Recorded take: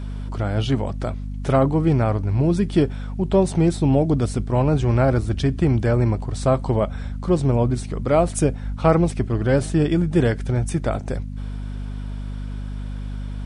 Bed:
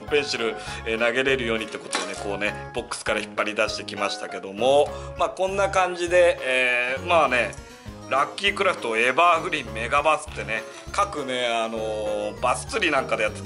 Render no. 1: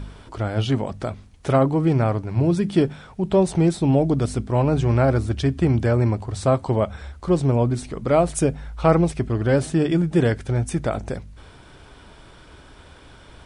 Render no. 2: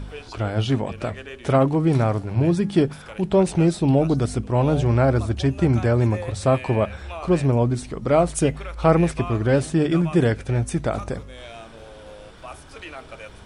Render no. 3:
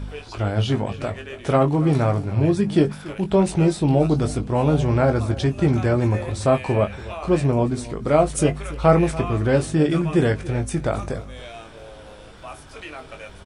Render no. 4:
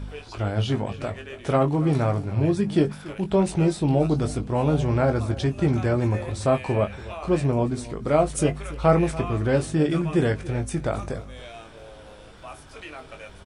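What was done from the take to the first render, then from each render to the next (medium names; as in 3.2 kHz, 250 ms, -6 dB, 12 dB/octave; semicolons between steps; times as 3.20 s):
de-hum 50 Hz, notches 5
add bed -16.5 dB
doubling 20 ms -7 dB; delay 284 ms -18 dB
trim -3 dB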